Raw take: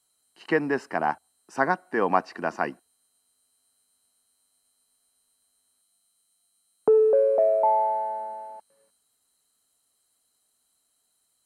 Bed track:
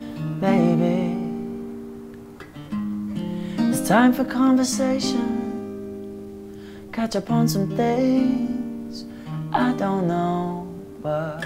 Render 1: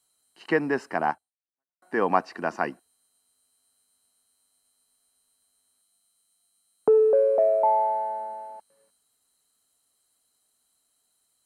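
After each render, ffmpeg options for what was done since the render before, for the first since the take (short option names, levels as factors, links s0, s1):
-filter_complex "[0:a]asplit=2[s0][s1];[s0]atrim=end=1.82,asetpts=PTS-STARTPTS,afade=t=out:st=1.1:d=0.72:c=exp[s2];[s1]atrim=start=1.82,asetpts=PTS-STARTPTS,afade=t=in:d=0.004:c=hsin[s3];[s2][s3]concat=n=2:v=0:a=1"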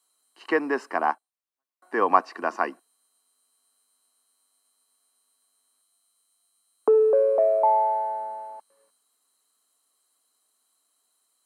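-af "highpass=f=250:w=0.5412,highpass=f=250:w=1.3066,equalizer=f=1100:t=o:w=0.32:g=8"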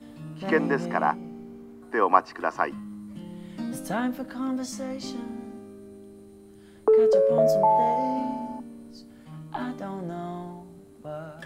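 -filter_complex "[1:a]volume=0.251[s0];[0:a][s0]amix=inputs=2:normalize=0"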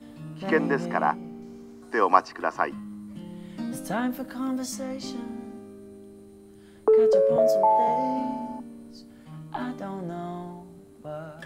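-filter_complex "[0:a]asettb=1/sr,asplit=3[s0][s1][s2];[s0]atrim=end=1.424[s3];[s1]atrim=start=1.42:end=2.28,asetpts=PTS-STARTPTS,afade=t=in:d=0.004:c=qsin,afade=t=out:st=0.856:d=0.004:c=qsin,equalizer=f=5800:t=o:w=1.2:g=11.5[s4];[s2]atrim=start=2.276[s5];[s3][s4]acrossfade=d=0.004:c1=hsin:c2=qsin[s6];[s6][s5]acrossfade=d=0.004:c1=qsin:c2=hsin,asettb=1/sr,asplit=3[s7][s8][s9];[s7]atrim=end=4.104[s10];[s8]atrim=start=4.1:end=4.76,asetpts=PTS-STARTPTS,afade=t=in:d=0.004:c=qsin,afade=t=out:st=0.656:d=0.004:c=qsin,highshelf=f=9900:g=11[s11];[s9]atrim=start=4.756[s12];[s10][s11]acrossfade=d=0.004:c1=hsin:c2=qsin[s13];[s13][s12]acrossfade=d=0.004:c1=qsin:c2=hsin,asettb=1/sr,asplit=3[s14][s15][s16];[s14]atrim=end=7.364[s17];[s15]atrim=start=7.36:end=7.88,asetpts=PTS-STARTPTS,afade=t=in:d=0.004:c=qsin,afade=t=out:st=0.516:d=0.004:c=qsin,highpass=f=230:w=0.5412,highpass=f=230:w=1.3066[s18];[s16]atrim=start=7.876[s19];[s17][s18]acrossfade=d=0.004:c1=hsin:c2=qsin[s20];[s20][s19]acrossfade=d=0.004:c1=qsin:c2=hsin"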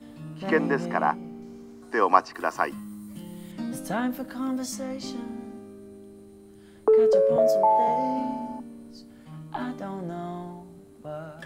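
-filter_complex "[0:a]asettb=1/sr,asplit=3[s0][s1][s2];[s0]atrim=end=2.344[s3];[s1]atrim=start=2.34:end=3.52,asetpts=PTS-STARTPTS,afade=t=in:d=0.004:c=qsin,afade=t=out:st=1.176:d=0.004:c=qsin,aemphasis=mode=production:type=50fm[s4];[s2]atrim=start=3.516[s5];[s3][s4]acrossfade=d=0.004:c1=hsin:c2=qsin[s6];[s6][s5]acrossfade=d=0.004:c1=qsin:c2=hsin"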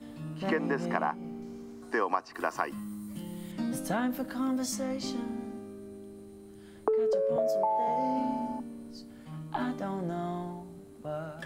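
-af "acompressor=threshold=0.0562:ratio=8"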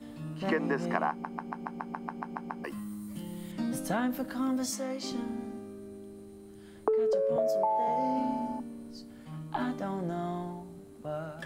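-filter_complex "[0:a]asettb=1/sr,asplit=3[s0][s1][s2];[s0]atrim=end=4.704[s3];[s1]atrim=start=4.7:end=5.12,asetpts=PTS-STARTPTS,afade=t=in:d=0.004:c=qsin,afade=t=out:st=0.416:d=0.004:c=qsin,highpass=260[s4];[s2]atrim=start=5.116[s5];[s3][s4]acrossfade=d=0.004:c1=hsin:c2=qsin[s6];[s6][s5]acrossfade=d=0.004:c1=qsin:c2=hsin,asplit=12[s7][s8][s9][s10][s11][s12][s13][s14][s15][s16][s17][s18];[s7]atrim=end=1.242[s19];[s8]atrim=start=1.098:end=1.242[s20];[s9]atrim=start=1.098:end=1.242[s21];[s10]atrim=start=1.098:end=1.242[s22];[s11]atrim=start=1.098:end=1.242[s23];[s12]atrim=start=1.098:end=1.242[s24];[s13]atrim=start=1.098:end=1.242[s25];[s14]atrim=start=1.098:end=1.242[s26];[s15]atrim=start=1.098:end=1.242[s27];[s16]atrim=start=1.098:end=1.242[s28];[s17]atrim=start=1.098:end=1.242[s29];[s18]atrim=start=2.638[s30];[s19][s20]acrossfade=d=0.004:c1=hsin:c2=hsin[s31];[s31][s21]acrossfade=d=0.004:c1=hsin:c2=hsin[s32];[s32][s22]acrossfade=d=0.004:c1=hsin:c2=hsin[s33];[s33][s23]acrossfade=d=0.004:c1=hsin:c2=hsin[s34];[s34][s24]acrossfade=d=0.004:c1=hsin:c2=hsin[s35];[s35][s25]acrossfade=d=0.004:c1=hsin:c2=hsin[s36];[s36][s26]acrossfade=d=0.004:c1=hsin:c2=hsin[s37];[s37][s27]acrossfade=d=0.004:c1=hsin:c2=hsin[s38];[s38][s28]acrossfade=d=0.004:c1=hsin:c2=hsin[s39];[s39][s29]acrossfade=d=0.004:c1=hsin:c2=hsin[s40];[s40][s30]acrossfade=d=0.004:c1=hsin:c2=hsin"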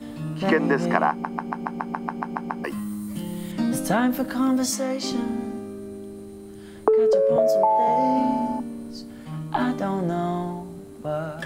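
-af "volume=2.82"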